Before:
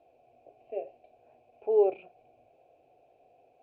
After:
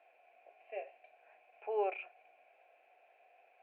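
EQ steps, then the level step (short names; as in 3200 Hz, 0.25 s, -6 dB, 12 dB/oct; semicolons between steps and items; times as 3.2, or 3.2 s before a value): HPF 1400 Hz 12 dB/oct; synth low-pass 1900 Hz, resonance Q 2.9; +8.0 dB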